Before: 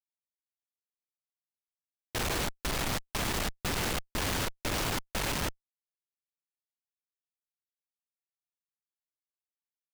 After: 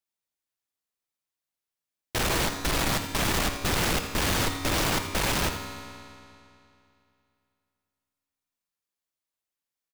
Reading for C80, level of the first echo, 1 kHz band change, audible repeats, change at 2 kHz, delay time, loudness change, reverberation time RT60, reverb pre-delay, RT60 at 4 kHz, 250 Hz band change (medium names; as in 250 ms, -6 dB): 6.5 dB, -11.5 dB, +6.5 dB, 1, +6.0 dB, 83 ms, +6.0 dB, 2.7 s, 4 ms, 2.4 s, +6.5 dB